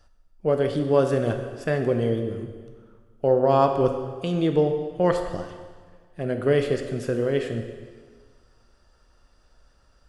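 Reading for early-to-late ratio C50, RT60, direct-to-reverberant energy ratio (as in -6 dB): 7.0 dB, 1.6 s, 5.0 dB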